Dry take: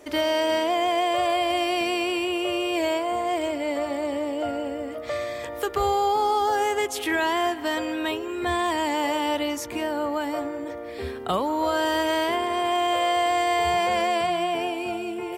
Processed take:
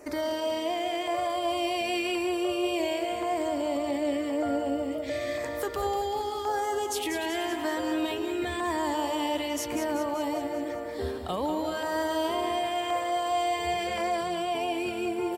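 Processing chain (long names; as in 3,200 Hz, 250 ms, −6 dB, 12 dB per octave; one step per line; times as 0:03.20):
brickwall limiter −21.5 dBFS, peak gain reduction 8 dB
auto-filter notch saw down 0.93 Hz 810–3,500 Hz
on a send: repeating echo 192 ms, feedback 60%, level −8 dB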